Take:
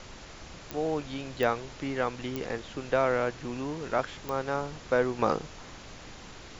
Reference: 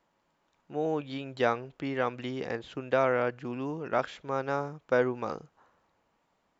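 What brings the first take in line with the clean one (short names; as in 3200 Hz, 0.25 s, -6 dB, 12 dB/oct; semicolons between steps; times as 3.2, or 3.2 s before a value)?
de-click; denoiser 28 dB, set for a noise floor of -46 dBFS; gain correction -8.5 dB, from 5.19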